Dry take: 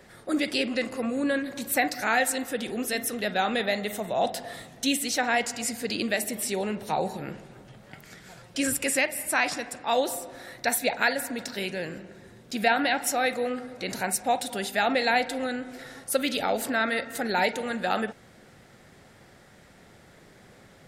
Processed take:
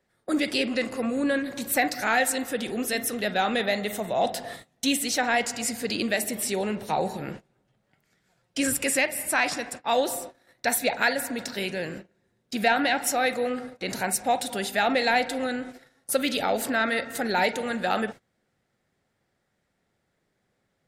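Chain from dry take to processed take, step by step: gate -39 dBFS, range -23 dB; in parallel at -7 dB: soft clip -19.5 dBFS, distortion -14 dB; on the sum: gain -1.5 dB

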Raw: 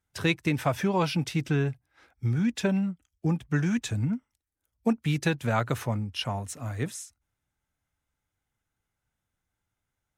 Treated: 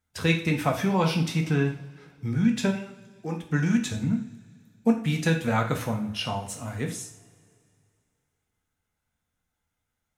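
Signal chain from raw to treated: 2.7–3.42 HPF 800 Hz -> 260 Hz 12 dB/oct; two-slope reverb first 0.45 s, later 2.5 s, from -22 dB, DRR 2 dB

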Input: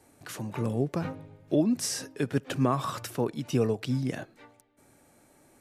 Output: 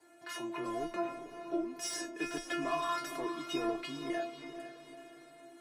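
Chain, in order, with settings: 0.86–1.76 compressor, threshold -32 dBFS, peak gain reduction 12.5 dB; overdrive pedal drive 20 dB, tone 2000 Hz, clips at -12 dBFS; frequency shift +15 Hz; metallic resonator 340 Hz, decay 0.35 s, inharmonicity 0.002; diffused feedback echo 0.459 s, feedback 49%, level -10 dB; gain +7.5 dB

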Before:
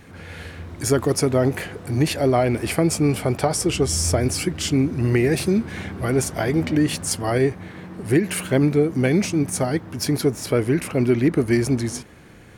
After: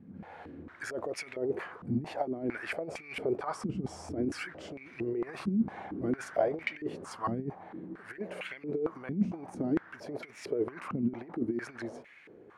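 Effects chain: negative-ratio compressor -21 dBFS, ratio -0.5; stepped band-pass 4.4 Hz 210–2200 Hz

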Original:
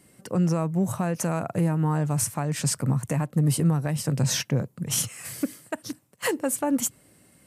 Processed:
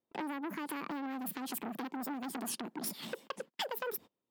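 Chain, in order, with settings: gate -46 dBFS, range -33 dB; low-pass opened by the level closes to 1600 Hz, open at -19 dBFS; compressor 6:1, threshold -36 dBFS, peak gain reduction 17 dB; speed mistake 45 rpm record played at 78 rpm; core saturation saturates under 1900 Hz; gain +2 dB

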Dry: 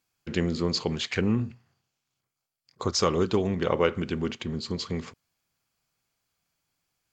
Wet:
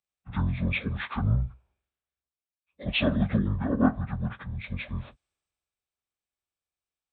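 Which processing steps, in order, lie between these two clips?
pitch shift by moving bins -11.5 st; three-band expander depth 40%

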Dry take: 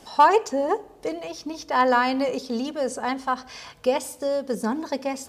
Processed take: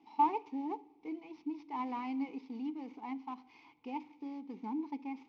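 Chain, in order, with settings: CVSD 32 kbps; vowel filter u; gain -3.5 dB

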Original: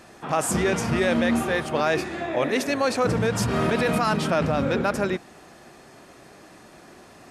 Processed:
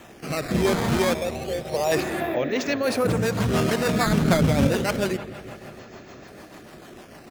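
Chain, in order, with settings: 1.14–1.92 fixed phaser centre 620 Hz, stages 4; in parallel at 0 dB: compressor, threshold -32 dBFS, peak gain reduction 13 dB; on the sum: downsampling 16000 Hz; decimation with a swept rate 9×, swing 160% 0.29 Hz; 4.06–4.67 low shelf 240 Hz +9.5 dB; on a send: analogue delay 0.165 s, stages 4096, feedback 76%, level -16.5 dB; on the sum: rotary speaker horn 0.85 Hz, later 6.7 Hz, at 2.27; Doppler distortion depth 0.14 ms

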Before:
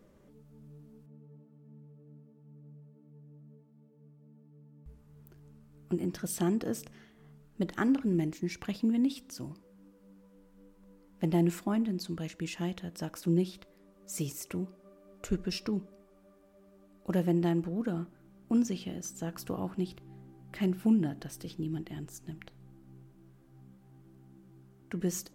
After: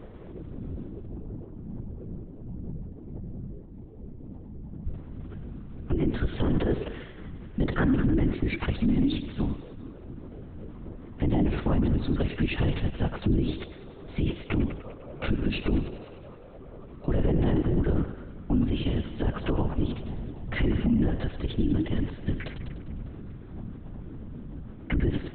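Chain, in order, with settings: low shelf 150 Hz +6.5 dB; in parallel at +1 dB: compressor, threshold -39 dBFS, peak gain reduction 18.5 dB; on the sum: thinning echo 99 ms, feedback 65%, high-pass 330 Hz, level -11 dB; LPC vocoder at 8 kHz whisper; limiter -23.5 dBFS, peak gain reduction 12 dB; gain +7.5 dB

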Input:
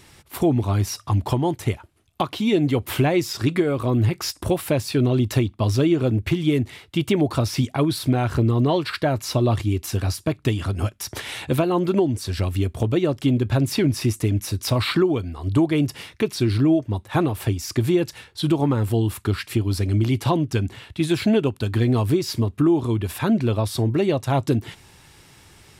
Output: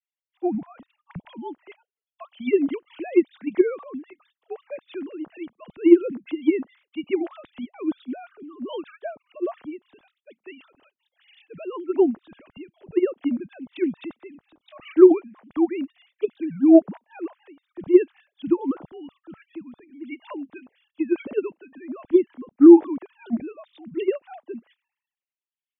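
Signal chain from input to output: sine-wave speech; three-band expander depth 100%; gain -7.5 dB

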